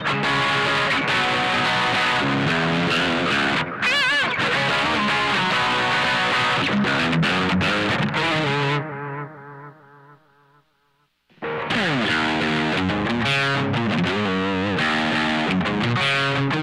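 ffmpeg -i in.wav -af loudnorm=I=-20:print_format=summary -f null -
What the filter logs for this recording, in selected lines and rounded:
Input Integrated:    -20.0 LUFS
Input True Peak:     -13.2 dBTP
Input LRA:             4.7 LU
Input Threshold:     -30.5 LUFS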